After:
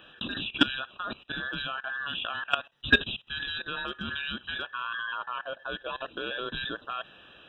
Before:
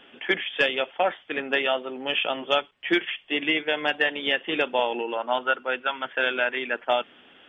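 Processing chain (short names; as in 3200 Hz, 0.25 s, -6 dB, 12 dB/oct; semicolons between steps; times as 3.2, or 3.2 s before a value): band inversion scrambler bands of 2000 Hz; level quantiser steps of 19 dB; gain +4 dB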